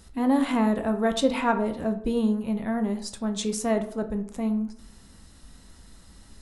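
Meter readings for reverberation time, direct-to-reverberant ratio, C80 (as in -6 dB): 0.60 s, 6.0 dB, 15.5 dB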